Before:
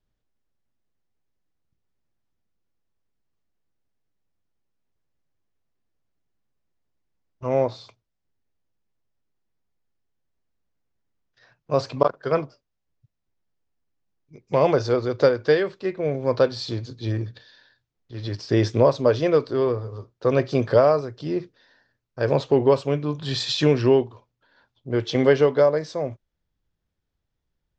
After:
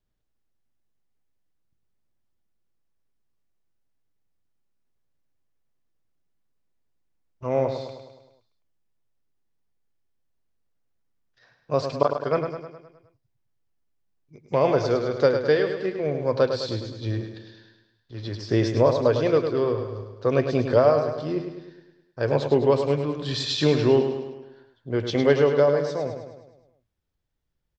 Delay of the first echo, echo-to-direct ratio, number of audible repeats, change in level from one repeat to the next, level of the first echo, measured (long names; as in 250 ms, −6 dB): 104 ms, −6.0 dB, 6, −5.5 dB, −7.5 dB